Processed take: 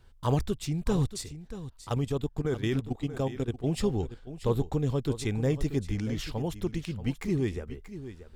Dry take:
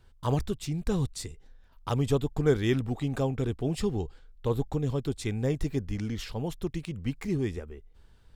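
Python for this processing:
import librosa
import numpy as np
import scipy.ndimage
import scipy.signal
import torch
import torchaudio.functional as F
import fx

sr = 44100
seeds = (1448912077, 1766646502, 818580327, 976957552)

y = fx.level_steps(x, sr, step_db=14, at=(1.21, 3.67))
y = y + 10.0 ** (-13.0 / 20.0) * np.pad(y, (int(633 * sr / 1000.0), 0))[:len(y)]
y = F.gain(torch.from_numpy(y), 1.0).numpy()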